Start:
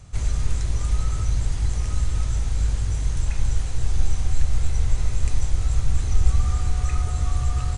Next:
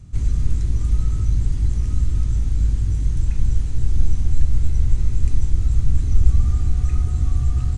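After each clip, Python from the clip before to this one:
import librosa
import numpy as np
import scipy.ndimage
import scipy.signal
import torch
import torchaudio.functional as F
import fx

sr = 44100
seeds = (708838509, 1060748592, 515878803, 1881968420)

y = fx.low_shelf_res(x, sr, hz=410.0, db=10.5, q=1.5)
y = y * librosa.db_to_amplitude(-7.0)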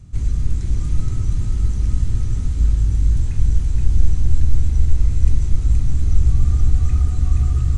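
y = x + 10.0 ** (-3.0 / 20.0) * np.pad(x, (int(474 * sr / 1000.0), 0))[:len(x)]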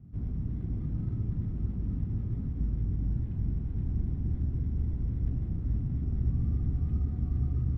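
y = np.repeat(x[::8], 8)[:len(x)]
y = fx.bandpass_q(y, sr, hz=210.0, q=1.3)
y = y * librosa.db_to_amplitude(-1.5)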